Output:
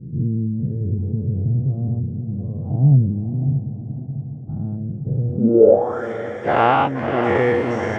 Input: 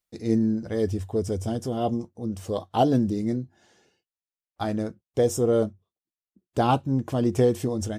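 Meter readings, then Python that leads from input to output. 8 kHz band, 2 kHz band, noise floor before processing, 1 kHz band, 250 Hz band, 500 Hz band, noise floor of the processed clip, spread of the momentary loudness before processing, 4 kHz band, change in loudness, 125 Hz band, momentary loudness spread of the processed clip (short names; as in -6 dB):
under -15 dB, +15.0 dB, under -85 dBFS, +7.5 dB, +3.0 dB, +6.5 dB, -31 dBFS, 10 LU, n/a, +6.0 dB, +11.0 dB, 13 LU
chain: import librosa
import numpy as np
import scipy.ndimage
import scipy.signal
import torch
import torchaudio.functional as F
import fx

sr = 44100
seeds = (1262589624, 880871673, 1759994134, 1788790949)

y = fx.spec_dilate(x, sr, span_ms=240)
y = fx.low_shelf(y, sr, hz=320.0, db=-6.5)
y = fx.rider(y, sr, range_db=10, speed_s=2.0)
y = fx.echo_diffused(y, sr, ms=600, feedback_pct=52, wet_db=-9)
y = fx.filter_sweep_lowpass(y, sr, from_hz=140.0, to_hz=2000.0, start_s=5.3, end_s=6.08, q=6.5)
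y = y * 10.0 ** (1.5 / 20.0)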